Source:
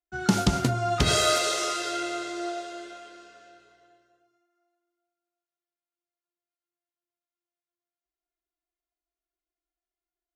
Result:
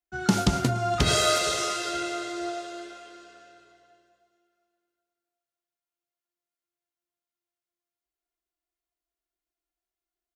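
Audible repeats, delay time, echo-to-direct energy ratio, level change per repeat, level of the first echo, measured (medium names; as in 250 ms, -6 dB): 2, 470 ms, -20.0 dB, -8.0 dB, -21.0 dB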